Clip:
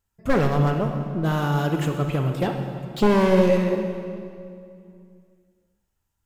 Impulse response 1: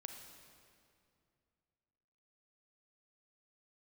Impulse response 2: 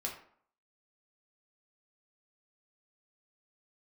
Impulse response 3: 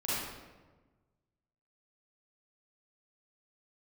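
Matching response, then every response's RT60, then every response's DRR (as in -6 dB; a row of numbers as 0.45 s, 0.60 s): 1; 2.4 s, 0.60 s, 1.3 s; 4.0 dB, -2.0 dB, -10.5 dB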